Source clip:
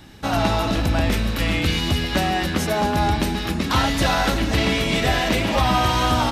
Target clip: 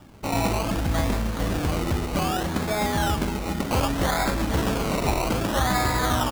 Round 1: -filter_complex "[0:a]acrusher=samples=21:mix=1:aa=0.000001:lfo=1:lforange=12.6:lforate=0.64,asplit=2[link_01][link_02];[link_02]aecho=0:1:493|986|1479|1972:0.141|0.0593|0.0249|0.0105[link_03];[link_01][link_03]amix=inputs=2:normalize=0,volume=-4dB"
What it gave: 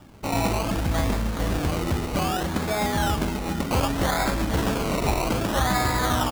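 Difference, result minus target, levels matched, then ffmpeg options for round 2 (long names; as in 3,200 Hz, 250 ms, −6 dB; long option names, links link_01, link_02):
echo 222 ms early
-filter_complex "[0:a]acrusher=samples=21:mix=1:aa=0.000001:lfo=1:lforange=12.6:lforate=0.64,asplit=2[link_01][link_02];[link_02]aecho=0:1:715|1430|2145|2860:0.141|0.0593|0.0249|0.0105[link_03];[link_01][link_03]amix=inputs=2:normalize=0,volume=-4dB"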